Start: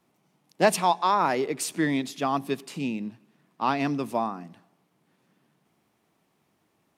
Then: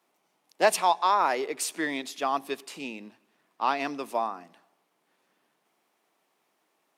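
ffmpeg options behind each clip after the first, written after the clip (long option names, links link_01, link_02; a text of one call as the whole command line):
ffmpeg -i in.wav -af "highpass=440" out.wav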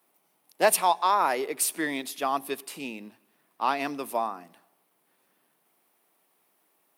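ffmpeg -i in.wav -af "lowshelf=frequency=83:gain=10.5,aexciter=amount=2.9:drive=7.6:freq=9200" out.wav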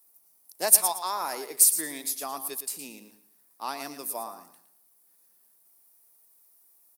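ffmpeg -i in.wav -af "aecho=1:1:113|226|339:0.282|0.0705|0.0176,aexciter=amount=7:drive=2.9:freq=4400,volume=-8.5dB" out.wav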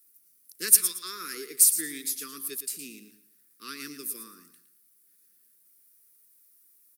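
ffmpeg -i in.wav -af "asuperstop=centerf=750:order=8:qfactor=0.86" out.wav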